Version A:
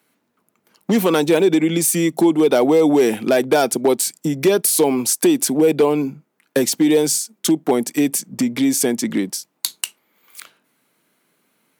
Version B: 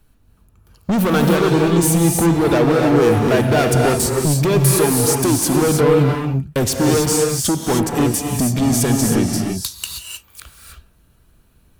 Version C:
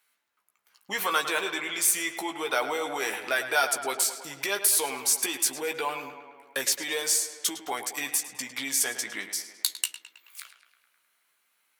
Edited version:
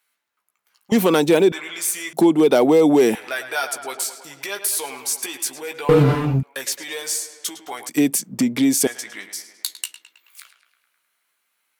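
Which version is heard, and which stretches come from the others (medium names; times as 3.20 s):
C
0.92–1.52 s: from A
2.13–3.15 s: from A
5.89–6.43 s: from B
7.89–8.87 s: from A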